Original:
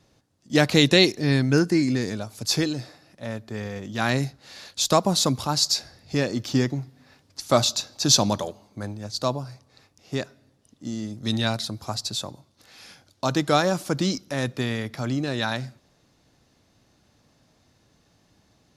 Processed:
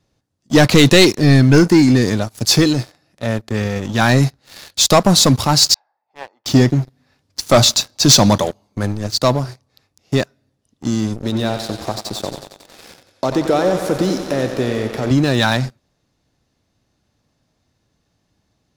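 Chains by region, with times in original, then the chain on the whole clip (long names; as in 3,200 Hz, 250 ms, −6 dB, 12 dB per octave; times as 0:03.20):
0:05.74–0:06.46: four-pole ladder band-pass 920 Hz, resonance 75% + one half of a high-frequency compander decoder only
0:11.16–0:15.11: downward compressor 2 to 1, threshold −44 dBFS + parametric band 460 Hz +12 dB 1.9 octaves + feedback echo with a high-pass in the loop 91 ms, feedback 82%, high-pass 160 Hz, level −8.5 dB
whole clip: leveller curve on the samples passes 3; low-shelf EQ 100 Hz +5.5 dB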